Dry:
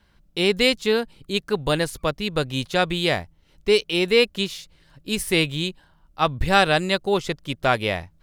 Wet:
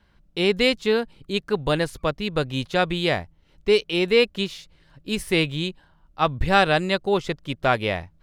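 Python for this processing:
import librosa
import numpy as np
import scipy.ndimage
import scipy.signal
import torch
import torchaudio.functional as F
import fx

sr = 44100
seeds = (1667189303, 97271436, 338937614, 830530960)

y = fx.high_shelf(x, sr, hz=5600.0, db=-9.5)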